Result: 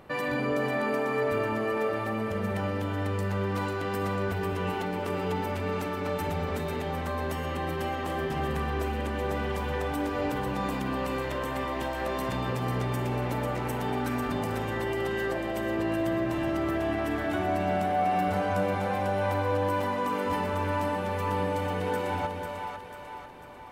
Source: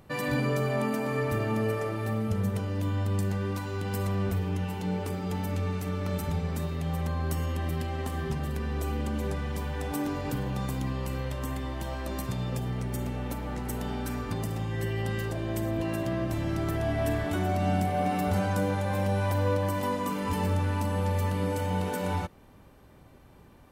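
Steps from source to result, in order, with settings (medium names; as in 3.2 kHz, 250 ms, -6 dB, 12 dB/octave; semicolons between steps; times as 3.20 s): tone controls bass -10 dB, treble -10 dB; in parallel at -2 dB: compressor with a negative ratio -39 dBFS; on the sum: two-band feedback delay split 620 Hz, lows 203 ms, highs 495 ms, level -5 dB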